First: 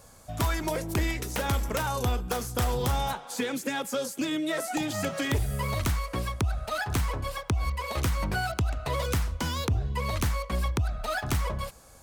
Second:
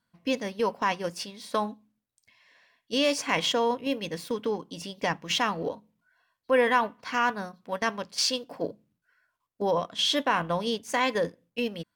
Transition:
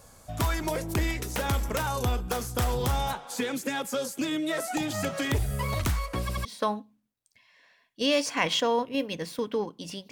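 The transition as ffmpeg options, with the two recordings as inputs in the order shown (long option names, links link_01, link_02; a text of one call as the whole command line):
ffmpeg -i cue0.wav -i cue1.wav -filter_complex "[0:a]apad=whole_dur=10.11,atrim=end=10.11,asplit=3[link_01][link_02][link_03];[link_01]atrim=end=6.292[link_04];[link_02]atrim=start=6.208:end=6.292[link_05];[link_03]atrim=start=6.208:end=6.292[link_06];[1:a]atrim=start=1.368:end=5.03[link_07];[link_04][link_05]acrossfade=duration=0.004:curve1=hsin:curve2=hsin[link_08];[link_08][link_06]acrossfade=duration=0.004:curve1=hsin:curve2=hsin[link_09];[link_09][link_07]acrossfade=duration=0.004:curve1=hsin:curve2=hsin" out.wav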